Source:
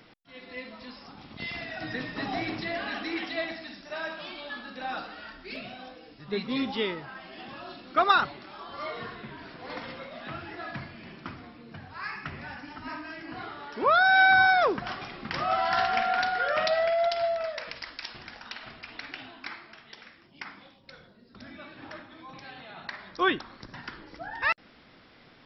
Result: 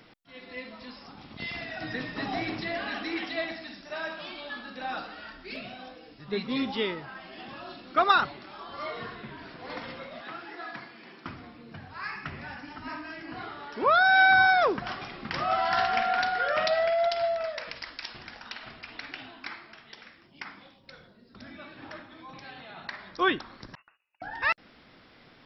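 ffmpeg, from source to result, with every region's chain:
ffmpeg -i in.wav -filter_complex "[0:a]asettb=1/sr,asplit=3[link_01][link_02][link_03];[link_01]atrim=end=10.214[link_04];[link_02]atrim=start=10.21:end=11.26,asetpts=PTS-STARTPTS,afade=type=in:duration=0.004:curve=qsin,afade=type=out:start_time=1.046:duration=0.004:curve=qsin,highpass=320,equalizer=frequency=2700:width_type=o:width=0.44:gain=-3.5,bandreject=frequency=610:width=6.3[link_05];[link_03]atrim=start=11.256[link_06];[link_04][link_05]acrossfade=duration=0.004:curve1=hsin:curve2=qsin[link_07];[link_07][link_06]acrossfade=duration=0.004:curve1=qsin:curve2=hsin,asettb=1/sr,asplit=3[link_08][link_09][link_10];[link_08]atrim=end=23.754[link_11];[link_09]atrim=start=23.75:end=24.22,asetpts=PTS-STARTPTS,afade=type=in:duration=0.004:curve=qsin,afade=type=out:start_time=0.466:duration=0.004:curve=qsin,agate=range=-35dB:threshold=-43dB:ratio=16:release=100:detection=peak,lowpass=frequency=2500:width_type=q:width=0.5098,lowpass=frequency=2500:width_type=q:width=0.6013,lowpass=frequency=2500:width_type=q:width=0.9,lowpass=frequency=2500:width_type=q:width=2.563,afreqshift=-2900,acompressor=threshold=-56dB:ratio=10:attack=3.2:release=140:knee=1:detection=peak[link_12];[link_10]atrim=start=24.216[link_13];[link_11][link_12]acrossfade=duration=0.004:curve1=hsin:curve2=qsin[link_14];[link_14][link_13]acrossfade=duration=0.004:curve1=qsin:curve2=hsin" out.wav

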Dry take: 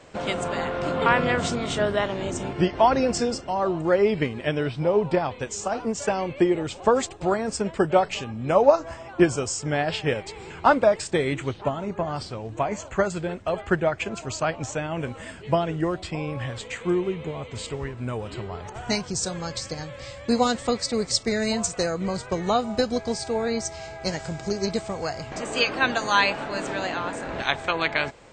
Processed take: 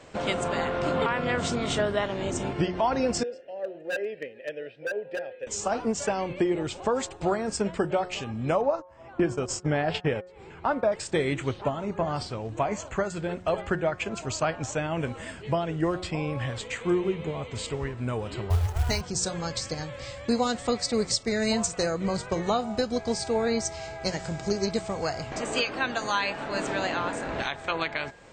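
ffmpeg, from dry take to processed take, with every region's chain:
ffmpeg -i in.wav -filter_complex "[0:a]asettb=1/sr,asplit=3[link_01][link_02][link_03];[link_01]atrim=end=3.234[link_04];[link_02]atrim=start=3.23:end=5.47,asetpts=PTS-STARTPTS,afade=type=in:duration=0.004:curve=qsin,afade=type=out:start_time=2.236:duration=0.004:curve=qsin,asplit=3[link_05][link_06][link_07];[link_05]bandpass=frequency=530:width_type=q:width=8,volume=0dB[link_08];[link_06]bandpass=frequency=1840:width_type=q:width=8,volume=-6dB[link_09];[link_07]bandpass=frequency=2480:width_type=q:width=8,volume=-9dB[link_10];[link_08][link_09][link_10]amix=inputs=3:normalize=0,aeval=exprs='0.0668*(abs(mod(val(0)/0.0668+3,4)-2)-1)':channel_layout=same[link_11];[link_03]atrim=start=5.466[link_12];[link_04][link_11]acrossfade=duration=0.004:curve1=hsin:curve2=qsin[link_13];[link_13][link_12]acrossfade=duration=0.004:curve1=qsin:curve2=hsin,asettb=1/sr,asplit=3[link_14][link_15][link_16];[link_14]atrim=end=8.614[link_17];[link_15]atrim=start=8.61:end=10.92,asetpts=PTS-STARTPTS,afade=type=in:duration=0.004:curve=qsin,afade=type=out:start_time=2.306:duration=0.004:curve=qsin,agate=range=-38dB:threshold=-30dB:ratio=16:release=100:detection=peak,highshelf=frequency=3700:gain=-11.5,acompressor=mode=upward:threshold=-19dB:ratio=2.5:attack=3.2:release=140:knee=2.83:detection=peak[link_18];[link_16]atrim=start=10.916[link_19];[link_17][link_18]acrossfade=duration=0.004:curve1=hsin:curve2=qsin[link_20];[link_20][link_19]acrossfade=duration=0.004:curve1=qsin:curve2=hsin,asettb=1/sr,asplit=3[link_21][link_22][link_23];[link_21]atrim=end=18.504[link_24];[link_22]atrim=start=18.5:end=19.01,asetpts=PTS-STARTPTS,afade=type=in:duration=0.004:curve=qsin,afade=type=out:start_time=0.506:duration=0.004:curve=qsin,lowshelf=frequency=120:width_type=q:width=3:gain=13.5,acrusher=bits=5:mode=log:mix=0:aa=0.000001[link_25];[link_23]atrim=start=19.006[link_26];[link_24][link_25]acrossfade=duration=0.004:curve1=hsin:curve2=qsin[link_27];[link_27][link_26]acrossfade=duration=0.004:curve1=qsin:curve2=hsin,bandreject=frequency=180.7:width_type=h:width=4,bandreject=frequency=361.4:width_type=h:width=4,bandreject=frequency=542.1:width_type=h:width=4,bandreject=frequency=722.8:width_type=h:width=4,bandreject=frequency=903.5:width_type=h:width=4,bandreject=frequency=1084.2:width_type=h:width=4,bandreject=frequency=1264.9:width_type=h:width=4,bandreject=frequency=1445.6:width_type=h:width=4,bandreject=frequency=1626.3:width_type=h:width=4,bandreject=frequency=1807:width_type=h:width=4,alimiter=limit=-15dB:level=0:latency=1:release=378" out.wav

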